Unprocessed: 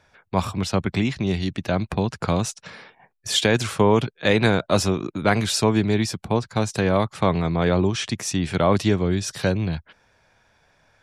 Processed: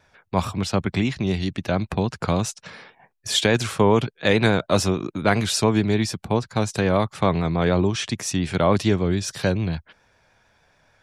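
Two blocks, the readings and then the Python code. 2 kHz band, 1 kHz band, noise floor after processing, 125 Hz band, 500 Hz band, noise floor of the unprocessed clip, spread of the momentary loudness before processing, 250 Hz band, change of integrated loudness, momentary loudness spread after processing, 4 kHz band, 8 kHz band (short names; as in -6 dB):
0.0 dB, 0.0 dB, -64 dBFS, 0.0 dB, 0.0 dB, -64 dBFS, 7 LU, 0.0 dB, 0.0 dB, 7 LU, 0.0 dB, 0.0 dB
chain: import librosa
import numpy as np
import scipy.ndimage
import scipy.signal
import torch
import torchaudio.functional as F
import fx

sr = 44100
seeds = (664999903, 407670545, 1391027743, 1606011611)

y = fx.vibrato(x, sr, rate_hz=6.9, depth_cents=34.0)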